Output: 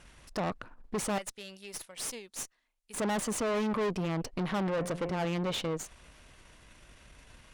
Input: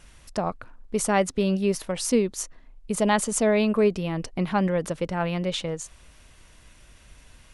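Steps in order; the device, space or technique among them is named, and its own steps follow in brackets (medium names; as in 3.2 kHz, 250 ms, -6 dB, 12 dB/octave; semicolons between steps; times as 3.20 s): 1.18–2.98 s: pre-emphasis filter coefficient 0.97; 4.69–5.25 s: de-hum 87.88 Hz, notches 31; tube preamp driven hard (valve stage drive 32 dB, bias 0.75; bass shelf 110 Hz -6 dB; treble shelf 4.3 kHz -6.5 dB); trim +4.5 dB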